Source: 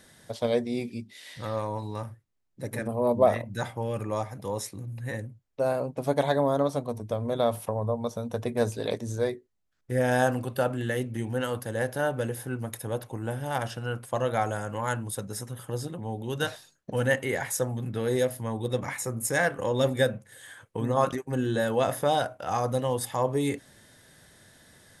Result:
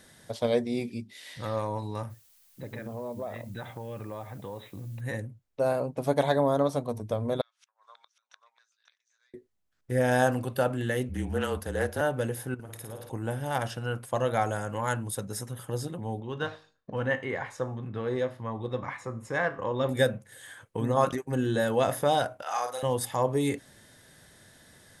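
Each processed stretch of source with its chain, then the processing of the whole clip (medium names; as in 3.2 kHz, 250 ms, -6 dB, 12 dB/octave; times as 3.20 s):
2.09–5.00 s: brick-wall FIR low-pass 4 kHz + compression 4:1, threshold -35 dBFS + added noise blue -61 dBFS
7.41–9.34 s: elliptic band-pass 1.4–6.5 kHz, stop band 80 dB + inverted gate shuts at -39 dBFS, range -28 dB + delay 538 ms -9 dB
11.09–12.01 s: frequency shift -32 Hz + loudspeaker Doppler distortion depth 0.12 ms
12.54–13.10 s: compression 4:1, threshold -40 dBFS + flutter echo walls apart 9.4 m, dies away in 0.73 s
16.20–19.89 s: low-pass 3.2 kHz + peaking EQ 1.1 kHz +9 dB 0.32 oct + feedback comb 52 Hz, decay 0.39 s, mix 50%
22.42–22.83 s: high-pass 870 Hz + doubling 41 ms -4 dB
whole clip: none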